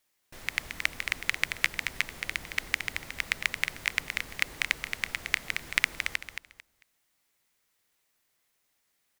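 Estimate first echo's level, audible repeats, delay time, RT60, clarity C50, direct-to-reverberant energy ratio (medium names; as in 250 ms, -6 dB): -7.0 dB, 3, 223 ms, no reverb, no reverb, no reverb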